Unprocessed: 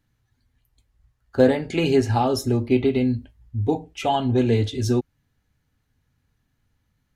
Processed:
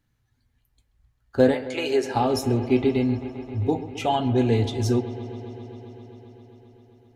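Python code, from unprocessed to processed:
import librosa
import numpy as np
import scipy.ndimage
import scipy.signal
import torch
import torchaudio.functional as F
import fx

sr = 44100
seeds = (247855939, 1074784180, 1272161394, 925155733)

p1 = fx.highpass(x, sr, hz=fx.line((1.54, 580.0), (2.15, 270.0)), slope=24, at=(1.54, 2.15), fade=0.02)
p2 = p1 + fx.echo_wet_lowpass(p1, sr, ms=132, feedback_pct=84, hz=3300.0, wet_db=-15.5, dry=0)
y = F.gain(torch.from_numpy(p2), -1.5).numpy()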